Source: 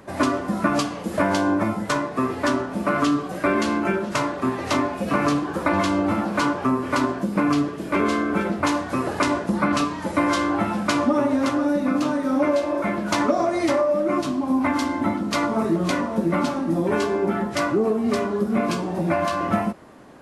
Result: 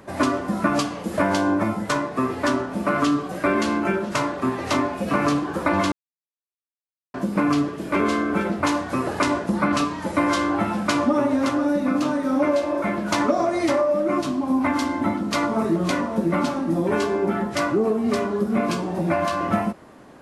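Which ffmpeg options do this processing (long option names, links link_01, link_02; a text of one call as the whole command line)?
ffmpeg -i in.wav -filter_complex "[0:a]asplit=3[link_01][link_02][link_03];[link_01]atrim=end=5.92,asetpts=PTS-STARTPTS,afade=type=out:start_time=5.916:duration=0.004:curve=hsin[link_04];[link_02]atrim=start=5.92:end=7.14,asetpts=PTS-STARTPTS,volume=0[link_05];[link_03]atrim=start=7.14,asetpts=PTS-STARTPTS,afade=type=in:duration=0.004:curve=hsin[link_06];[link_04][link_05][link_06]concat=n=3:v=0:a=1" out.wav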